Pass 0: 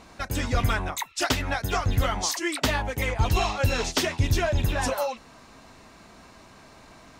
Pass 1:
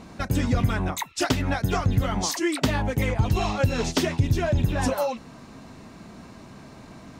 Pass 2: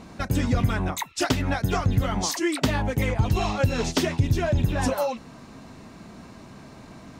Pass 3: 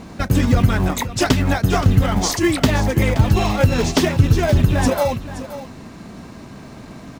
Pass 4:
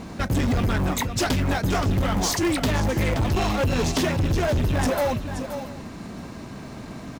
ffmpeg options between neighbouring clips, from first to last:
-af "equalizer=f=170:w=0.51:g=11.5,acompressor=threshold=-20dB:ratio=2.5"
-af anull
-filter_complex "[0:a]asplit=2[a][b];[b]acrusher=samples=31:mix=1:aa=0.000001,volume=-10dB[c];[a][c]amix=inputs=2:normalize=0,aecho=1:1:524:0.211,volume=5.5dB"
-af "asoftclip=type=tanh:threshold=-18.5dB,aecho=1:1:681:0.0944"

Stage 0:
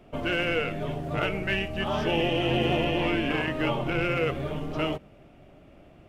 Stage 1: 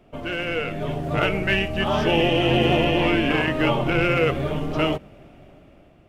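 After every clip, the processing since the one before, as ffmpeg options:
-af "dynaudnorm=f=220:g=7:m=8dB,volume=-1.5dB"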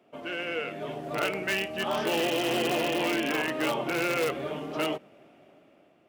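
-filter_complex "[0:a]asplit=2[a][b];[b]aeval=exprs='(mod(4.47*val(0)+1,2)-1)/4.47':c=same,volume=-6.5dB[c];[a][c]amix=inputs=2:normalize=0,highpass=260,volume=-9dB"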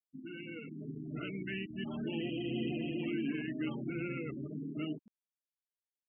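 -af "firequalizer=gain_entry='entry(260,0);entry(520,-21);entry(2000,-12)':delay=0.05:min_phase=1,afftfilt=real='re*gte(hypot(re,im),0.0141)':imag='im*gte(hypot(re,im),0.0141)':win_size=1024:overlap=0.75,areverse,acompressor=mode=upward:threshold=-49dB:ratio=2.5,areverse"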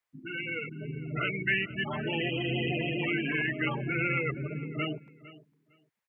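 -af "equalizer=f=125:t=o:w=1:g=8,equalizer=f=250:t=o:w=1:g=-9,equalizer=f=500:t=o:w=1:g=6,equalizer=f=1k:t=o:w=1:g=9,equalizer=f=2k:t=o:w=1:g=12,aecho=1:1:456|912:0.126|0.0214,volume=4dB"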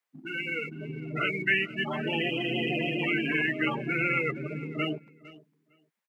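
-filter_complex "[0:a]highpass=f=160:w=0.5412,highpass=f=160:w=1.3066,asplit=2[a][b];[b]aeval=exprs='sgn(val(0))*max(abs(val(0))-0.00299,0)':c=same,volume=-9dB[c];[a][c]amix=inputs=2:normalize=0,asplit=2[d][e];[e]adelay=13,volume=-14dB[f];[d][f]amix=inputs=2:normalize=0"

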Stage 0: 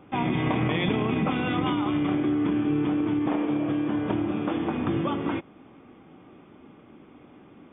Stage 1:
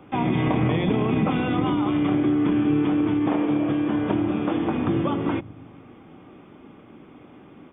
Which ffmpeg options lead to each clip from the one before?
-filter_complex "[0:a]acrossover=split=200|990[a][b][c];[a]aecho=1:1:119|238|357|476|595|714|833:0.398|0.231|0.134|0.0777|0.0451|0.0261|0.0152[d];[c]alimiter=level_in=4.5dB:limit=-24dB:level=0:latency=1:release=486,volume=-4.5dB[e];[d][b][e]amix=inputs=3:normalize=0,volume=3.5dB"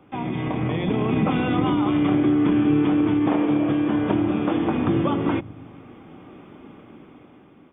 -af "dynaudnorm=f=260:g=7:m=8dB,volume=-5dB"

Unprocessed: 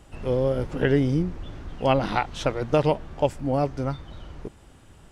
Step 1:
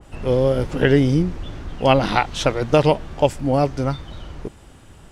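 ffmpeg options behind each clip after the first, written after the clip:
-af "adynamicequalizer=threshold=0.00891:dfrequency=2200:dqfactor=0.7:tfrequency=2200:tqfactor=0.7:attack=5:release=100:ratio=0.375:range=2:mode=boostabove:tftype=highshelf,volume=5.5dB"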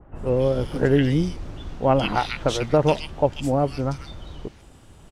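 -filter_complex "[0:a]acrossover=split=1800[a][b];[b]adelay=140[c];[a][c]amix=inputs=2:normalize=0,volume=-3dB"

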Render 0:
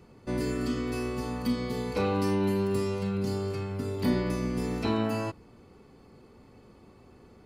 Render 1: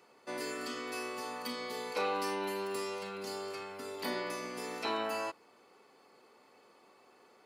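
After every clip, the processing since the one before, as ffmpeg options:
-af "highpass=610"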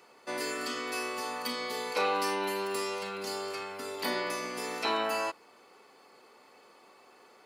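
-af "lowshelf=f=470:g=-5,volume=6dB"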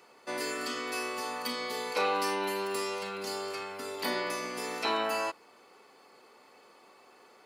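-af anull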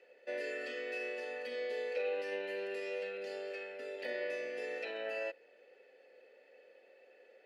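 -filter_complex "[0:a]alimiter=level_in=1dB:limit=-24dB:level=0:latency=1:release=36,volume=-1dB,asplit=3[a][b][c];[a]bandpass=f=530:t=q:w=8,volume=0dB[d];[b]bandpass=f=1.84k:t=q:w=8,volume=-6dB[e];[c]bandpass=f=2.48k:t=q:w=8,volume=-9dB[f];[d][e][f]amix=inputs=3:normalize=0,volume=6.5dB"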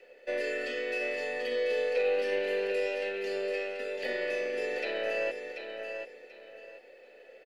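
-filter_complex "[0:a]aecho=1:1:736|1472|2208:0.447|0.116|0.0302,acrossover=split=230|930|1400[a][b][c][d];[c]aeval=exprs='max(val(0),0)':c=same[e];[a][b][e][d]amix=inputs=4:normalize=0,volume=7.5dB"

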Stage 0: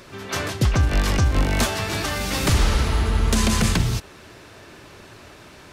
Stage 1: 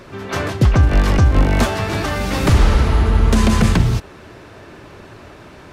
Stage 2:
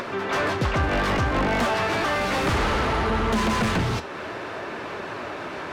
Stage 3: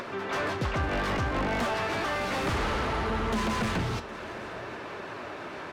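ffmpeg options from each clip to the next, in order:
-af "highshelf=f=2.6k:g=-11,volume=6.5dB"
-filter_complex "[0:a]flanger=delay=4.2:depth=8.5:regen=77:speed=0.62:shape=sinusoidal,asplit=2[a][b];[b]highpass=f=720:p=1,volume=27dB,asoftclip=type=tanh:threshold=-6.5dB[c];[a][c]amix=inputs=2:normalize=0,lowpass=f=2k:p=1,volume=-6dB,acompressor=mode=upward:threshold=-19dB:ratio=2.5,volume=-7.5dB"
-af "aecho=1:1:763:0.119,volume=-6dB"

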